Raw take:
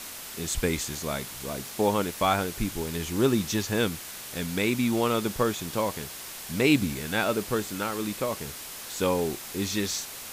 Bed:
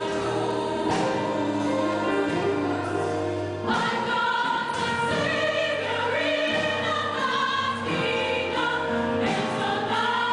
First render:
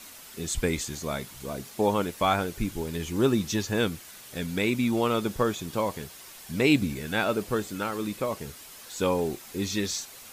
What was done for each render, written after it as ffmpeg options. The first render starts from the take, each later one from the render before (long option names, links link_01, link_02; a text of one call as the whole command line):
ffmpeg -i in.wav -af "afftdn=noise_reduction=8:noise_floor=-40" out.wav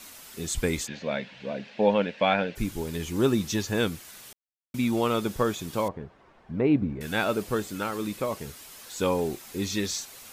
ffmpeg -i in.wav -filter_complex "[0:a]asplit=3[link_01][link_02][link_03];[link_01]afade=type=out:start_time=0.86:duration=0.02[link_04];[link_02]highpass=180,equalizer=frequency=200:width_type=q:width=4:gain=6,equalizer=frequency=360:width_type=q:width=4:gain=-8,equalizer=frequency=540:width_type=q:width=4:gain=8,equalizer=frequency=1200:width_type=q:width=4:gain=-9,equalizer=frequency=1700:width_type=q:width=4:gain=7,equalizer=frequency=2600:width_type=q:width=4:gain=8,lowpass=frequency=4100:width=0.5412,lowpass=frequency=4100:width=1.3066,afade=type=in:start_time=0.86:duration=0.02,afade=type=out:start_time=2.55:duration=0.02[link_05];[link_03]afade=type=in:start_time=2.55:duration=0.02[link_06];[link_04][link_05][link_06]amix=inputs=3:normalize=0,asettb=1/sr,asplit=3[link_07][link_08][link_09];[link_07]atrim=end=5.884[link_10];[link_08]atrim=start=5.88:end=7.01,asetpts=PTS-STARTPTS,afade=type=in:duration=0.004:curve=qsin,afade=type=out:start_time=1.126:duration=0.004:curve=qsin,lowpass=1100[link_11];[link_09]atrim=start=7.006[link_12];[link_10][link_11]acrossfade=duration=0.004:curve1=hsin:curve2=qsin[link_13];[link_13][link_12]acrossfade=duration=0.004:curve1=qsin:curve2=hsin,asplit=3[link_14][link_15][link_16];[link_14]atrim=end=4.33,asetpts=PTS-STARTPTS,afade=type=out:start_time=4.326:duration=0.004:curve=hsin[link_17];[link_15]atrim=start=4.33:end=4.74,asetpts=PTS-STARTPTS,volume=0[link_18];[link_16]atrim=start=4.74,asetpts=PTS-STARTPTS,afade=type=in:duration=0.004:curve=hsin[link_19];[link_17][link_18][link_19]concat=n=3:v=0:a=1" out.wav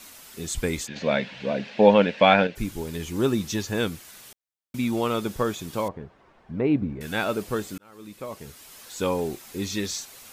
ffmpeg -i in.wav -filter_complex "[0:a]asplit=4[link_01][link_02][link_03][link_04];[link_01]atrim=end=0.962[link_05];[link_02]atrim=start=0.958:end=2.472,asetpts=PTS-STARTPTS,volume=6.5dB[link_06];[link_03]atrim=start=2.468:end=7.78,asetpts=PTS-STARTPTS,afade=type=out:start_time=5.308:duration=0.004:curve=hsin[link_07];[link_04]atrim=start=7.78,asetpts=PTS-STARTPTS,afade=type=in:duration=0.99[link_08];[link_05][link_06]acrossfade=duration=0.004:curve1=hsin:curve2=hsin[link_09];[link_07][link_08]concat=n=2:v=0:a=1[link_10];[link_09][link_10]acrossfade=duration=0.004:curve1=hsin:curve2=hsin" out.wav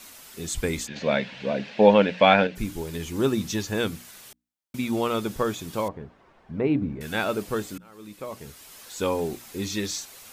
ffmpeg -i in.wav -af "bandreject=frequency=60:width_type=h:width=6,bandreject=frequency=120:width_type=h:width=6,bandreject=frequency=180:width_type=h:width=6,bandreject=frequency=240:width_type=h:width=6,bandreject=frequency=300:width_type=h:width=6" out.wav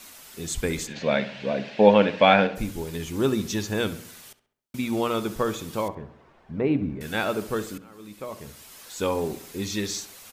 ffmpeg -i in.wav -filter_complex "[0:a]asplit=2[link_01][link_02];[link_02]adelay=67,lowpass=frequency=2800:poles=1,volume=-13.5dB,asplit=2[link_03][link_04];[link_04]adelay=67,lowpass=frequency=2800:poles=1,volume=0.5,asplit=2[link_05][link_06];[link_06]adelay=67,lowpass=frequency=2800:poles=1,volume=0.5,asplit=2[link_07][link_08];[link_08]adelay=67,lowpass=frequency=2800:poles=1,volume=0.5,asplit=2[link_09][link_10];[link_10]adelay=67,lowpass=frequency=2800:poles=1,volume=0.5[link_11];[link_01][link_03][link_05][link_07][link_09][link_11]amix=inputs=6:normalize=0" out.wav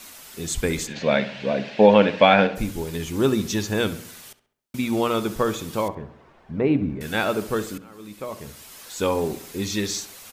ffmpeg -i in.wav -af "volume=3dB,alimiter=limit=-2dB:level=0:latency=1" out.wav